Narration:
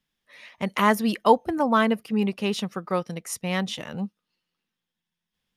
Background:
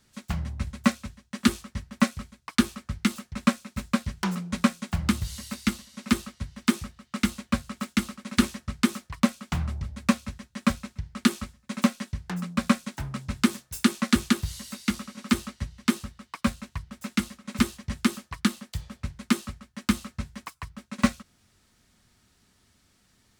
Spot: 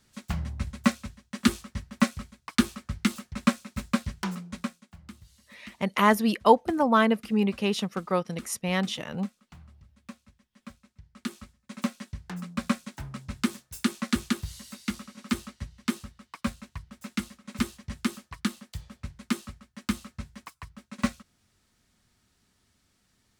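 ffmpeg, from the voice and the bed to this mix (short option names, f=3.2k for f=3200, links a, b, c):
-filter_complex "[0:a]adelay=5200,volume=-0.5dB[a];[1:a]volume=16dB,afade=t=out:st=4:d=0.86:silence=0.0891251,afade=t=in:st=10.81:d=1.43:silence=0.141254[b];[a][b]amix=inputs=2:normalize=0"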